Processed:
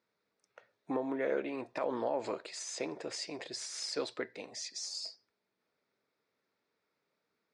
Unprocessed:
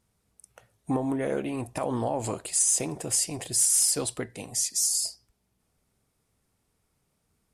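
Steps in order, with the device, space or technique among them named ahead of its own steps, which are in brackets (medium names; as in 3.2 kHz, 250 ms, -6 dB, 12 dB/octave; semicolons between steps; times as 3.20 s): phone earpiece (cabinet simulation 430–4300 Hz, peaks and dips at 760 Hz -8 dB, 1.1 kHz -4 dB, 3 kHz -10 dB)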